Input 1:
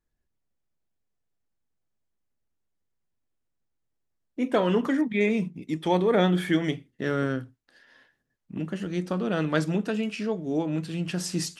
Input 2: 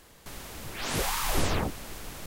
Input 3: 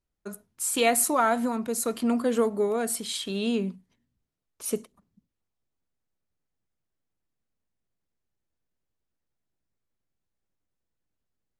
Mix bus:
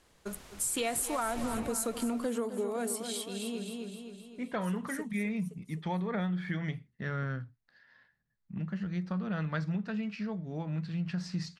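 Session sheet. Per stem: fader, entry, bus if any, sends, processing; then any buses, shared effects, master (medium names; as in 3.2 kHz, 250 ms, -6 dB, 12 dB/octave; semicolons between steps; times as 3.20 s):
-1.0 dB, 0.00 s, no send, no echo send, FFT filter 200 Hz 0 dB, 290 Hz -16 dB, 1 kHz -5 dB, 2 kHz -3 dB, 3.1 kHz -12 dB, 4.3 kHz -5 dB, 10 kHz -27 dB
-9.5 dB, 0.00 s, no send, no echo send, low-pass 10 kHz 12 dB/octave
-1.5 dB, 0.00 s, no send, echo send -13 dB, peaking EQ 8.5 kHz +3 dB 0.77 oct; auto duck -17 dB, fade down 2.00 s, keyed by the first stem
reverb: none
echo: feedback delay 260 ms, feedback 53%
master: compression 10:1, threshold -29 dBFS, peak gain reduction 11 dB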